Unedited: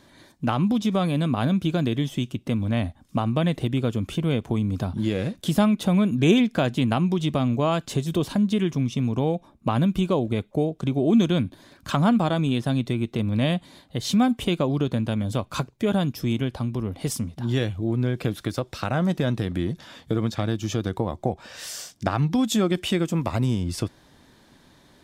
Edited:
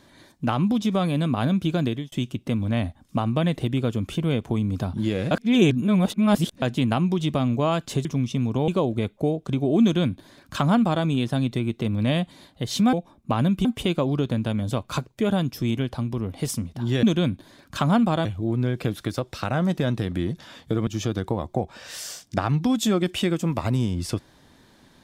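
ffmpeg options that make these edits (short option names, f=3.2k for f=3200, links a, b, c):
-filter_complex "[0:a]asplit=11[a][b][c][d][e][f][g][h][i][j][k];[a]atrim=end=2.12,asetpts=PTS-STARTPTS,afade=t=out:st=1.87:d=0.25[l];[b]atrim=start=2.12:end=5.312,asetpts=PTS-STARTPTS,afade=t=in:d=0.004:c=hsin[m];[c]atrim=start=5.308:end=6.622,asetpts=PTS-STARTPTS,areverse[n];[d]atrim=start=6.618:end=8.052[o];[e]atrim=start=8.668:end=9.302[p];[f]atrim=start=10.018:end=14.272[q];[g]atrim=start=9.298:end=10.022[r];[h]atrim=start=14.268:end=17.652[s];[i]atrim=start=11.158:end=12.382[t];[j]atrim=start=17.648:end=20.272[u];[k]atrim=start=20.558[v];[l][m]concat=n=2:v=0:a=1[w];[w][n]acrossfade=d=0.004:c1=hsin:c2=hsin[x];[x][o]acrossfade=d=0.004:c1=hsin:c2=hsin[y];[y][p]acrossfade=d=0.004:c1=hsin:c2=hsin[z];[z][q]acrossfade=d=0.004:c1=hsin:c2=hsin[aa];[aa][r]acrossfade=d=0.004:c1=hsin:c2=hsin[ab];[ab][s]acrossfade=d=0.004:c1=hsin:c2=hsin[ac];[ac][t]acrossfade=d=0.004:c1=hsin:c2=hsin[ad];[ad][u]acrossfade=d=0.004:c1=hsin:c2=hsin[ae];[ae][v]acrossfade=d=0.004:c1=hsin:c2=hsin"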